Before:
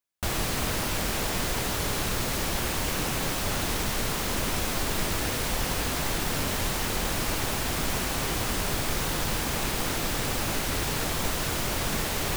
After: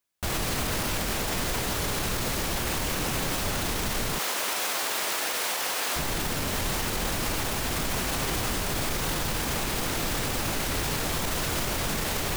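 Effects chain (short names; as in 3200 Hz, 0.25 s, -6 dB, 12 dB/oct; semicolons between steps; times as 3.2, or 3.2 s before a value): 4.19–5.96 HPF 570 Hz 12 dB/oct; limiter -24.5 dBFS, peak gain reduction 10 dB; gain +5.5 dB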